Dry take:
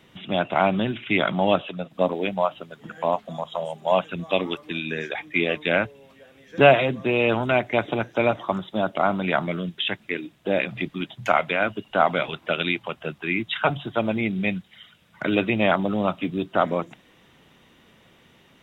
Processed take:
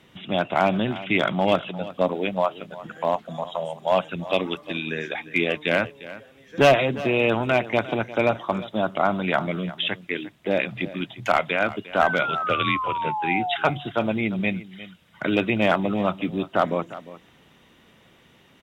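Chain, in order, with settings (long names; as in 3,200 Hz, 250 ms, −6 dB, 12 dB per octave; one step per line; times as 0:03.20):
asymmetric clip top −11.5 dBFS, bottom −6.5 dBFS
0:12.46–0:13.02: frequency shifter −56 Hz
0:12.02–0:13.56: sound drawn into the spectrogram fall 690–1,600 Hz −27 dBFS
on a send: single-tap delay 352 ms −16.5 dB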